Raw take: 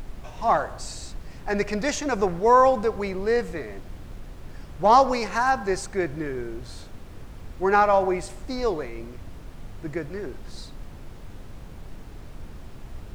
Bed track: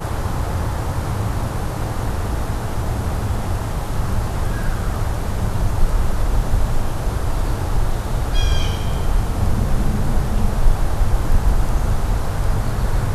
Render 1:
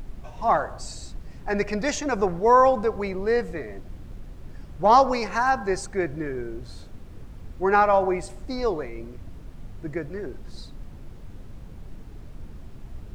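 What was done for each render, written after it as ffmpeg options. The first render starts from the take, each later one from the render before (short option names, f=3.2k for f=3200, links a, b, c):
-af "afftdn=nr=6:nf=-42"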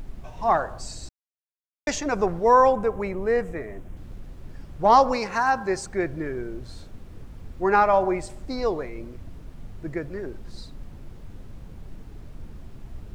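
-filter_complex "[0:a]asettb=1/sr,asplit=3[a][b][c];[a]atrim=end=2.724[d];[b]atrim=start=2.72:end=3.97,asetpts=PTS-STARTPTS,afade=t=in:d=0.004:c=qsin,afade=t=out:st=1.246:d=0.004:c=qsin,equalizer=f=4.5k:t=o:w=0.65:g=-11.5[e];[c]atrim=start=3.966[f];[d][e]acrossfade=d=0.004:c1=hsin:c2=qsin[g];[g][f]acrossfade=d=0.004:c1=qsin:c2=hsin,asettb=1/sr,asplit=3[h][i][j];[h]atrim=end=5.164[k];[i]atrim=start=5.16:end=5.87,asetpts=PTS-STARTPTS,afade=t=in:d=0.004:c=qsin,afade=t=out:st=0.706:d=0.004:c=qsin,highpass=f=79:p=1[l];[j]atrim=start=5.866[m];[k][l]acrossfade=d=0.004:c1=hsin:c2=qsin[n];[n][m]acrossfade=d=0.004:c1=qsin:c2=hsin,asplit=3[o][p][q];[o]atrim=end=1.09,asetpts=PTS-STARTPTS,afade=t=out:st=1.086:d=0.004:c=hsin[r];[p]atrim=start=1.09:end=1.87,asetpts=PTS-STARTPTS,volume=0[s];[q]atrim=start=1.87,asetpts=PTS-STARTPTS,afade=t=in:d=0.004:c=hsin[t];[r][s][t]concat=n=3:v=0:a=1"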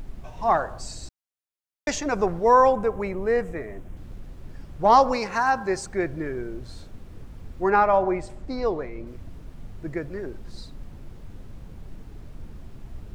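-filter_complex "[0:a]asettb=1/sr,asplit=3[a][b][c];[a]atrim=end=7.704[d];[b]atrim=start=7.7:end=9.07,asetpts=PTS-STARTPTS,afade=t=in:d=0.004:c=qsin,afade=t=out:st=1.366:d=0.004:c=qsin,highshelf=f=4.4k:g=-9.5[e];[c]atrim=start=9.066[f];[d][e]acrossfade=d=0.004:c1=hsin:c2=qsin[g];[g][f]acrossfade=d=0.004:c1=qsin:c2=hsin"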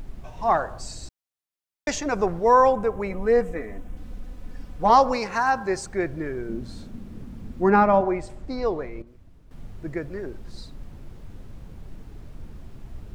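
-filter_complex "[0:a]asettb=1/sr,asplit=3[a][b][c];[a]atrim=end=3.104[d];[b]atrim=start=3.1:end=4.9,asetpts=PTS-STARTPTS,afade=t=in:d=0.004:c=qsin,afade=t=out:st=1.796:d=0.004:c=qsin,aecho=1:1:4:0.65,atrim=end_sample=79380[e];[c]atrim=start=4.896[f];[d][e]acrossfade=d=0.004:c1=hsin:c2=qsin[g];[g][f]acrossfade=d=0.004:c1=qsin:c2=hsin,asettb=1/sr,asplit=3[h][i][j];[h]atrim=end=6.494[k];[i]atrim=start=6.49:end=8.01,asetpts=PTS-STARTPTS,afade=t=in:d=0.004:c=qsin,afade=t=out:st=1.516:d=0.004:c=qsin,equalizer=f=220:t=o:w=0.77:g=13.5[l];[j]atrim=start=8.006[m];[k][l]acrossfade=d=0.004:c1=hsin:c2=qsin[n];[n][m]acrossfade=d=0.004:c1=qsin:c2=hsin,asplit=3[o][p][q];[o]atrim=end=9.022[r];[p]atrim=start=9.018:end=9.512,asetpts=PTS-STARTPTS,volume=-11.5dB[s];[q]atrim=start=9.508[t];[r][s]acrossfade=d=0.004:c1=hsin:c2=hsin[u];[u][t]acrossfade=d=0.004:c1=hsin:c2=hsin"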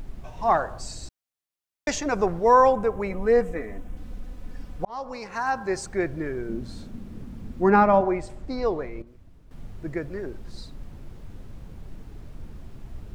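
-filter_complex "[0:a]asplit=2[a][b];[a]atrim=end=4.85,asetpts=PTS-STARTPTS,afade=t=out:st=4.846:d=0.004:c=hsin[c];[b]atrim=start=4.85,asetpts=PTS-STARTPTS,afade=t=in:d=1.02[d];[c][d]concat=n=2:v=0:a=1"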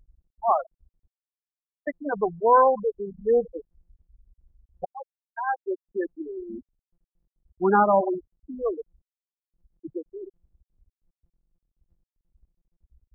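-af "afftfilt=real='re*gte(hypot(re,im),0.224)':imag='im*gte(hypot(re,im),0.224)':win_size=1024:overlap=0.75,highpass=f=260:p=1"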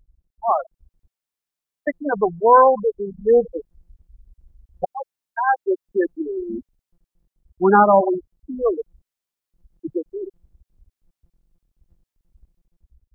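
-af "dynaudnorm=f=260:g=5:m=8.5dB"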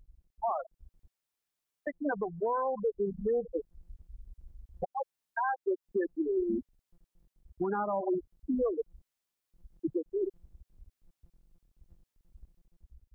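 -af "acompressor=threshold=-20dB:ratio=6,alimiter=limit=-23dB:level=0:latency=1:release=360"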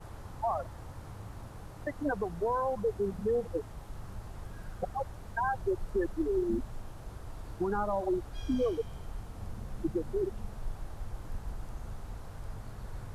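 -filter_complex "[1:a]volume=-23dB[a];[0:a][a]amix=inputs=2:normalize=0"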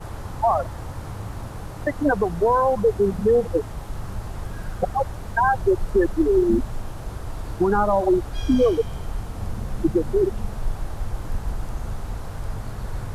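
-af "volume=12dB"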